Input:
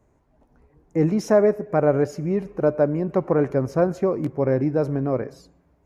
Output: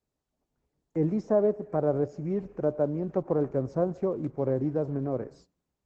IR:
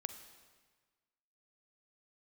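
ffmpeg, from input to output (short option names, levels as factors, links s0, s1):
-filter_complex "[0:a]agate=range=0.158:threshold=0.00501:ratio=16:detection=peak,acrossover=split=360|1200[s0][s1][s2];[s2]acompressor=threshold=0.00282:ratio=16[s3];[s0][s1][s3]amix=inputs=3:normalize=0,volume=0.473" -ar 48000 -c:a libopus -b:a 12k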